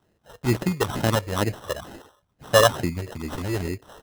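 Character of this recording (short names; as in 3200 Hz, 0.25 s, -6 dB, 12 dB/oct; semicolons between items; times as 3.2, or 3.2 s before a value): phasing stages 8, 2.2 Hz, lowest notch 230–1200 Hz; aliases and images of a low sample rate 2300 Hz, jitter 0%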